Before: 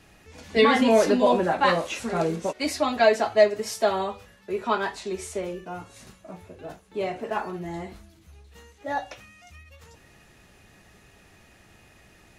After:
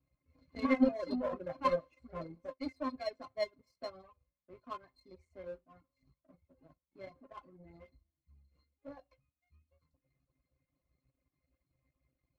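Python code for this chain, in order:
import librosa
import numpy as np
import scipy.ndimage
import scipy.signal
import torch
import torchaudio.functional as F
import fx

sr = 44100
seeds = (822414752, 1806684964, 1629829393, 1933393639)

y = fx.octave_resonator(x, sr, note='C', decay_s=0.12)
y = fx.power_curve(y, sr, exponent=1.4)
y = fx.dereverb_blind(y, sr, rt60_s=0.84)
y = y * librosa.db_to_amplitude(1.5)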